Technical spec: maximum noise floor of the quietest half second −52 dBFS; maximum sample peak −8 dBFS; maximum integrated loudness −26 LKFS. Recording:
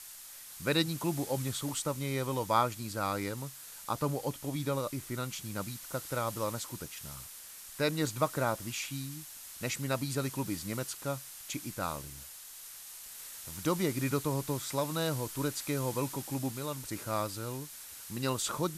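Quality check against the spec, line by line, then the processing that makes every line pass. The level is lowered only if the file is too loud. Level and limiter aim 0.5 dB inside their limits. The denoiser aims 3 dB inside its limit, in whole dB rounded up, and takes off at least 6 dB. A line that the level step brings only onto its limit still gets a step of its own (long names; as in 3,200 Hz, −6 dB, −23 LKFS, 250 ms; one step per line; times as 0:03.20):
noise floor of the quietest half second −49 dBFS: out of spec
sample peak −12.5 dBFS: in spec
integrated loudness −35.0 LKFS: in spec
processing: broadband denoise 6 dB, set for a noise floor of −49 dBFS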